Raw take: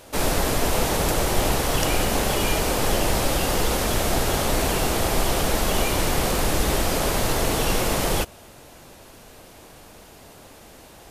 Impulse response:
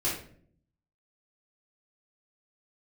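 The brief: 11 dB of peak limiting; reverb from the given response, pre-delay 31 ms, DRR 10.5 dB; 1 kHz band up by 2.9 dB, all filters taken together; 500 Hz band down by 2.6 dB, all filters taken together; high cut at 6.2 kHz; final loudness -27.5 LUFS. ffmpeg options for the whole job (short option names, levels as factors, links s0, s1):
-filter_complex "[0:a]lowpass=6200,equalizer=f=500:t=o:g=-5,equalizer=f=1000:t=o:g=5.5,alimiter=limit=0.112:level=0:latency=1,asplit=2[s0][s1];[1:a]atrim=start_sample=2205,adelay=31[s2];[s1][s2]afir=irnorm=-1:irlink=0,volume=0.126[s3];[s0][s3]amix=inputs=2:normalize=0,volume=1.06"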